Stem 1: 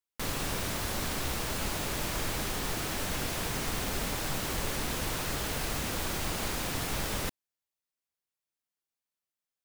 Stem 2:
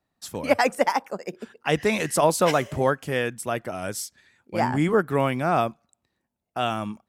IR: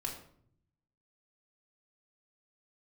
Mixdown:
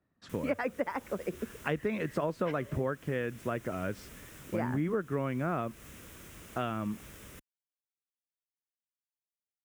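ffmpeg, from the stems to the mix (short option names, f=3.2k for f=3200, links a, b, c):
-filter_complex "[0:a]equalizer=f=4.4k:t=o:w=0.51:g=-11,adelay=100,volume=-15dB[a];[1:a]lowpass=1.7k,volume=2.5dB[b];[a][b]amix=inputs=2:normalize=0,highpass=41,equalizer=f=800:t=o:w=0.67:g=-11,acompressor=threshold=-30dB:ratio=4"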